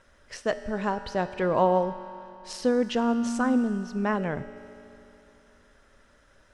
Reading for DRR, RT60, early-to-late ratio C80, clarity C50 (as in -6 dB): 10.0 dB, 3.0 s, 12.0 dB, 11.0 dB